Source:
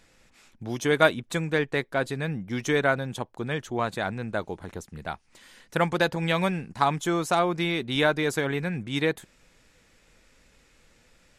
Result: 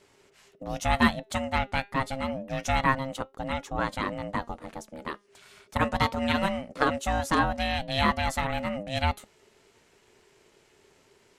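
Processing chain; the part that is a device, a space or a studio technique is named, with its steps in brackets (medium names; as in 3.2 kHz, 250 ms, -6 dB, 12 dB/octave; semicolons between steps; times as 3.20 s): alien voice (ring modulator 400 Hz; flange 0.28 Hz, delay 3.5 ms, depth 1.5 ms, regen +88%); trim +6 dB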